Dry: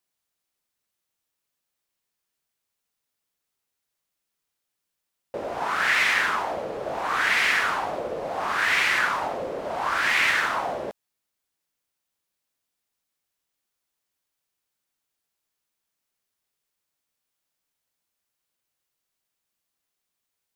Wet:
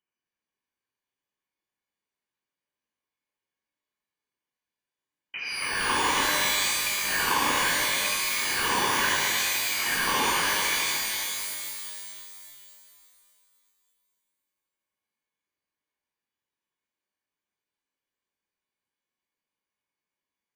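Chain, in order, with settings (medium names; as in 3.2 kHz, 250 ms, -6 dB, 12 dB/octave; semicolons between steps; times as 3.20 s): comb filter that takes the minimum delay 1.5 ms; reverb removal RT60 1.8 s; frequency inversion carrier 3 kHz; pitch-shifted reverb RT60 2.6 s, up +12 st, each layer -2 dB, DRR -2.5 dB; trim -3.5 dB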